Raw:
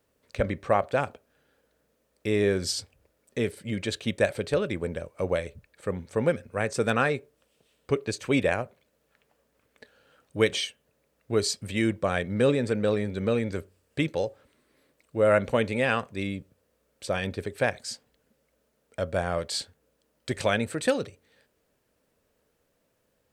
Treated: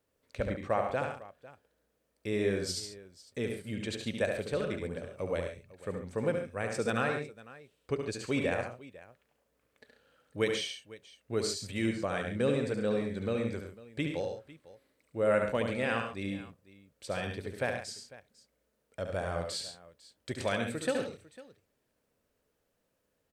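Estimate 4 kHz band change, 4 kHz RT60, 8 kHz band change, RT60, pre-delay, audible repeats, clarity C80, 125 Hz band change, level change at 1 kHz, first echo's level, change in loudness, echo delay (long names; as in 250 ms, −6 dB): −6.0 dB, no reverb audible, −6.0 dB, no reverb audible, no reverb audible, 4, no reverb audible, −6.0 dB, −6.0 dB, −6.0 dB, −6.0 dB, 71 ms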